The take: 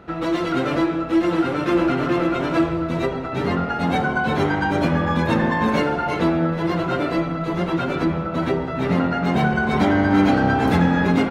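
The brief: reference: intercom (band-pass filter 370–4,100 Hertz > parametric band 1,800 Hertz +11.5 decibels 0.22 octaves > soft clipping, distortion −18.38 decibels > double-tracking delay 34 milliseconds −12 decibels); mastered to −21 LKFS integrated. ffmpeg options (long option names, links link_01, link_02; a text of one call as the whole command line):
ffmpeg -i in.wav -filter_complex "[0:a]highpass=370,lowpass=4100,equalizer=frequency=1800:width_type=o:width=0.22:gain=11.5,asoftclip=threshold=-14.5dB,asplit=2[link_01][link_02];[link_02]adelay=34,volume=-12dB[link_03];[link_01][link_03]amix=inputs=2:normalize=0,volume=2dB" out.wav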